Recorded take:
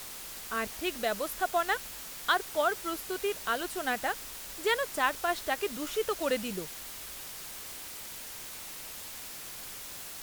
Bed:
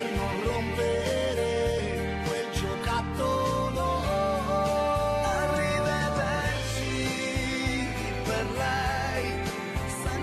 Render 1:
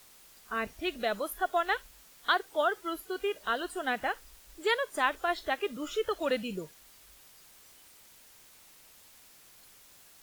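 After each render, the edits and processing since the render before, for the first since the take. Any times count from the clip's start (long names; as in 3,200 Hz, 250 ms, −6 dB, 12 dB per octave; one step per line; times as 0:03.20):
noise reduction from a noise print 14 dB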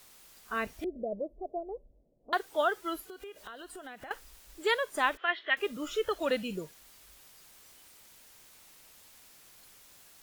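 0:00.84–0:02.33: elliptic low-pass filter 610 Hz, stop band 60 dB
0:03.08–0:04.11: downward compressor 8 to 1, threshold −42 dBFS
0:05.17–0:05.57: loudspeaker in its box 460–3,100 Hz, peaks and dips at 500 Hz −6 dB, 790 Hz −10 dB, 1,900 Hz +8 dB, 3,100 Hz +10 dB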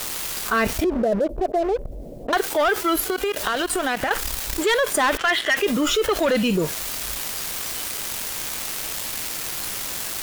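leveller curve on the samples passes 3
envelope flattener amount 70%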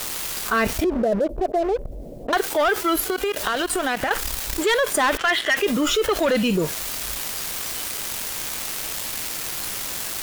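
no processing that can be heard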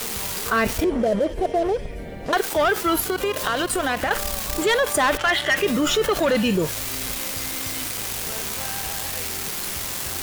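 mix in bed −8.5 dB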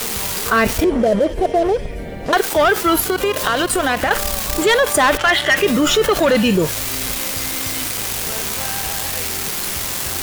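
level +5.5 dB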